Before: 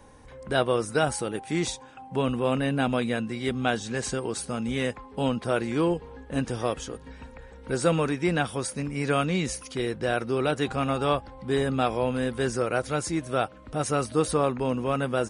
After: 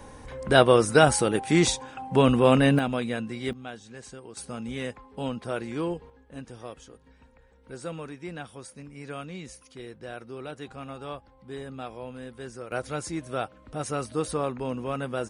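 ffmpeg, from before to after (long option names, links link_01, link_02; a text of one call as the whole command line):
ffmpeg -i in.wav -af "asetnsamples=nb_out_samples=441:pad=0,asendcmd='2.79 volume volume -2.5dB;3.53 volume volume -14dB;4.37 volume volume -5.5dB;6.1 volume volume -13dB;12.72 volume volume -4.5dB',volume=6.5dB" out.wav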